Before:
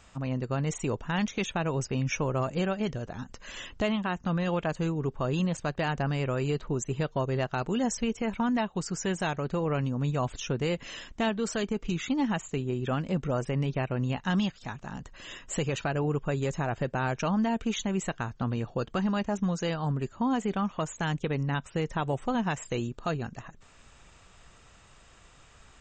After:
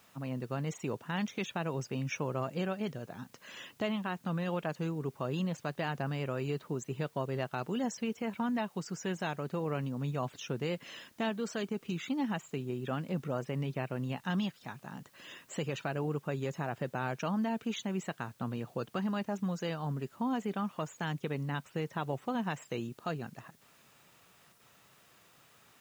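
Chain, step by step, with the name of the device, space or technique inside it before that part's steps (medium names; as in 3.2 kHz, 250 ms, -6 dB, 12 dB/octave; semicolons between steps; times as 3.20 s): high-pass 120 Hz 24 dB/octave; worn cassette (low-pass 6.1 kHz; wow and flutter 24 cents; level dips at 24.53 s, 67 ms -7 dB; white noise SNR 31 dB); trim -5.5 dB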